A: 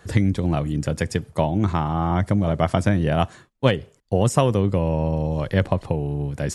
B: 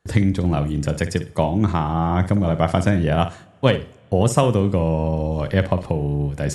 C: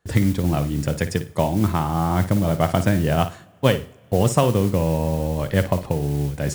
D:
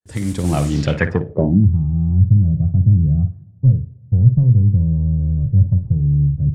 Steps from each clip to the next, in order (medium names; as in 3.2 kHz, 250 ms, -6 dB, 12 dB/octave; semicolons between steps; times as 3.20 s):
flutter echo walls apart 9.5 m, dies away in 0.26 s; gate with hold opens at -33 dBFS; two-slope reverb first 0.56 s, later 4.1 s, from -19 dB, DRR 17.5 dB; trim +1.5 dB
modulation noise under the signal 21 dB; trim -1 dB
fade-in on the opening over 0.67 s; saturation -11.5 dBFS, distortion -15 dB; low-pass sweep 9 kHz -> 120 Hz, 0.64–1.69 s; trim +6 dB